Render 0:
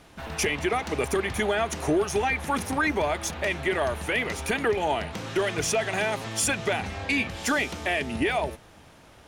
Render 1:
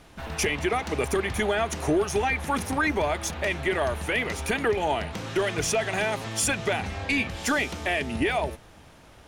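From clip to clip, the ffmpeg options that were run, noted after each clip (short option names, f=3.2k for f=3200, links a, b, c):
-af "lowshelf=f=60:g=6.5"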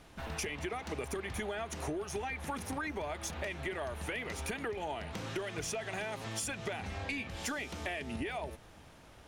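-af "acompressor=threshold=-30dB:ratio=6,volume=-5dB"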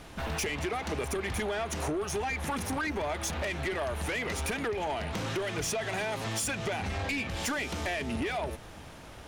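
-af "asoftclip=type=tanh:threshold=-36dB,volume=9dB"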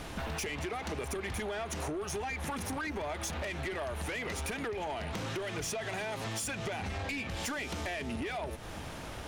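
-af "acompressor=threshold=-42dB:ratio=4,volume=5.5dB"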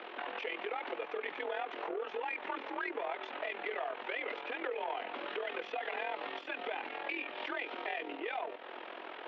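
-af "tremolo=f=42:d=0.71,highpass=f=290:t=q:w=0.5412,highpass=f=290:t=q:w=1.307,lowpass=f=3.3k:t=q:w=0.5176,lowpass=f=3.3k:t=q:w=0.7071,lowpass=f=3.3k:t=q:w=1.932,afreqshift=52,volume=2.5dB"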